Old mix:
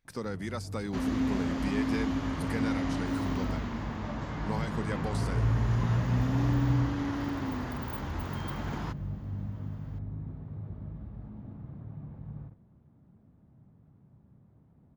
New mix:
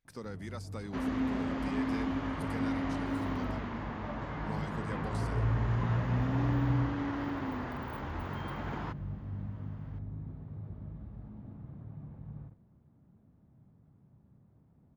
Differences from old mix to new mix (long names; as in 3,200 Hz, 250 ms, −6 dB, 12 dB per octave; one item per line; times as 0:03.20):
speech −7.0 dB
first sound −3.0 dB
second sound: add bass and treble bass −6 dB, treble −13 dB